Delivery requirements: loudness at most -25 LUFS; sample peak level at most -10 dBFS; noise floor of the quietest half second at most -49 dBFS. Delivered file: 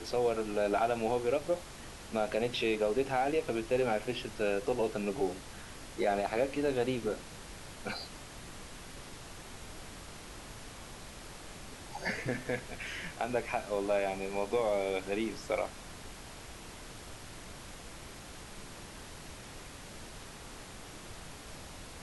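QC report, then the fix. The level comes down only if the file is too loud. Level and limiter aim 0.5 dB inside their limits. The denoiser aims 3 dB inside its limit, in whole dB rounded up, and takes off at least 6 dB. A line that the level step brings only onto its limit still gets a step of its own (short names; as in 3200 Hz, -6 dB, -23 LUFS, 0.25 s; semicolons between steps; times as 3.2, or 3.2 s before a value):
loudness -33.5 LUFS: OK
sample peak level -18.0 dBFS: OK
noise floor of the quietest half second -47 dBFS: fail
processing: denoiser 6 dB, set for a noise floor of -47 dBFS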